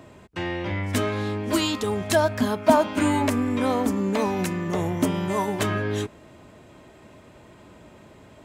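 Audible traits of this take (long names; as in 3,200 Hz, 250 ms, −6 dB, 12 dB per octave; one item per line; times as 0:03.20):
background noise floor −50 dBFS
spectral slope −5.5 dB per octave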